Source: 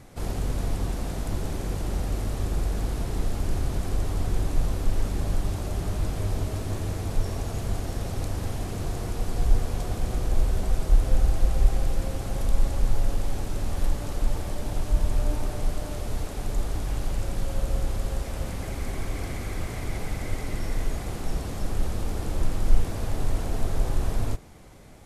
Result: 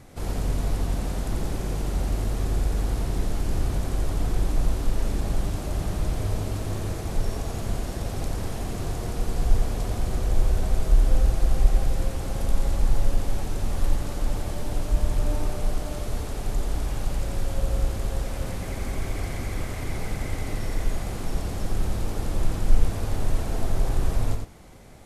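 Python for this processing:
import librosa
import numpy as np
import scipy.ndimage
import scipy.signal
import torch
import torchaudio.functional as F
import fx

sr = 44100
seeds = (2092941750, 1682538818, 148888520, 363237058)

y = x + 10.0 ** (-5.0 / 20.0) * np.pad(x, (int(89 * sr / 1000.0), 0))[:len(x)]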